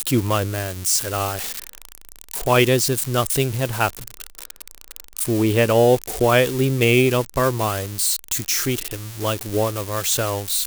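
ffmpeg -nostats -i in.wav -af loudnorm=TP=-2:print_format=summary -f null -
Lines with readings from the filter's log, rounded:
Input Integrated:    -20.4 LUFS
Input True Peak:      -3.4 dBTP
Input LRA:             3.4 LU
Input Threshold:     -31.0 LUFS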